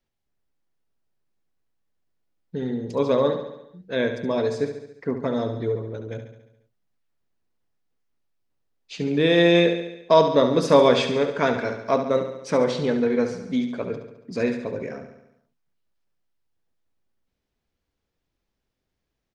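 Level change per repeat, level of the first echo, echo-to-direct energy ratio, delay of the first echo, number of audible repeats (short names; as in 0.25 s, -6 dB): -4.5 dB, -9.0 dB, -7.0 dB, 70 ms, 6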